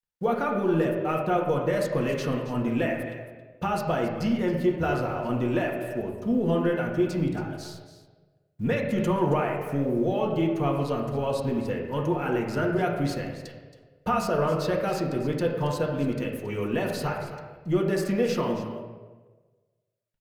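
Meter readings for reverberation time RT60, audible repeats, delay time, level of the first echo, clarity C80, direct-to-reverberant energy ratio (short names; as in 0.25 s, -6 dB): 1.4 s, 1, 0.274 s, -13.5 dB, 5.5 dB, -1.0 dB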